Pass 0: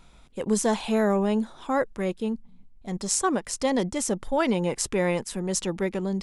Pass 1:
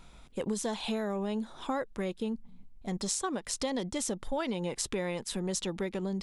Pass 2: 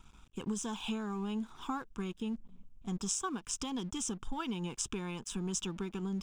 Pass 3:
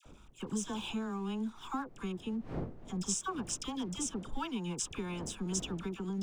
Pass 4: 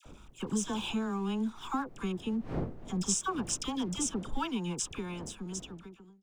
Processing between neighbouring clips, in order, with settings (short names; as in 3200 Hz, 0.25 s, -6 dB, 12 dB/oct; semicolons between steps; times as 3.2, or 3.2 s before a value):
dynamic EQ 3700 Hz, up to +7 dB, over -52 dBFS, Q 2.3; compressor, threshold -30 dBFS, peak gain reduction 11.5 dB
fixed phaser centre 2900 Hz, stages 8; crossover distortion -59 dBFS
wind noise 340 Hz -50 dBFS; dispersion lows, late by 56 ms, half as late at 1100 Hz
ending faded out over 1.80 s; gain +4 dB